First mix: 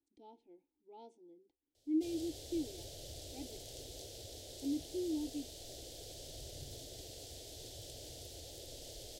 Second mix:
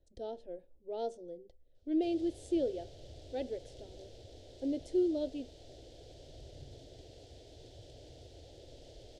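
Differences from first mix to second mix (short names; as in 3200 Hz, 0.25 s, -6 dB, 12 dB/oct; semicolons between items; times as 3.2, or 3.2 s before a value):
speech: remove vowel filter u; master: add tape spacing loss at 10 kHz 22 dB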